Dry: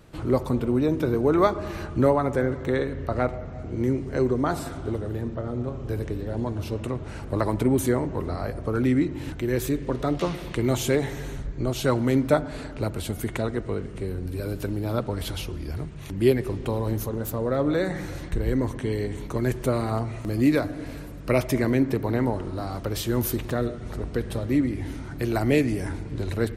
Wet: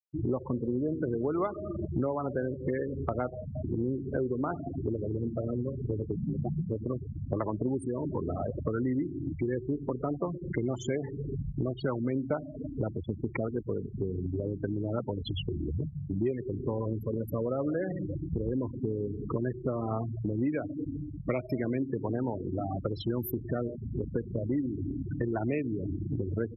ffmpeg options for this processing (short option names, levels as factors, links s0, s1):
-filter_complex "[0:a]asettb=1/sr,asplit=3[s0][s1][s2];[s0]atrim=end=6.164[s3];[s1]atrim=start=6.16:end=6.69,asetpts=PTS-STARTPTS,afade=t=in:d=0.004:c=qsin,afade=t=out:st=0.526:d=0.004:c=qsin,afreqshift=-260[s4];[s2]atrim=start=6.686[s5];[s3][s4]acrossfade=d=0.004:c1=hsin:c2=qsin[s6];[s6][s5]acrossfade=d=0.004:c1=qsin:c2=hsin,asplit=3[s7][s8][s9];[s7]afade=t=out:st=7.78:d=0.02[s10];[s8]acompressor=threshold=0.0631:ratio=3:attack=3.2:release=140:knee=1:detection=peak,afade=t=in:st=7.78:d=0.02,afade=t=out:st=8.66:d=0.02[s11];[s9]afade=t=in:st=8.66:d=0.02[s12];[s10][s11][s12]amix=inputs=3:normalize=0,afftfilt=real='re*gte(hypot(re,im),0.0708)':imag='im*gte(hypot(re,im),0.0708)':win_size=1024:overlap=0.75,highpass=100,acompressor=threshold=0.0178:ratio=5,volume=2"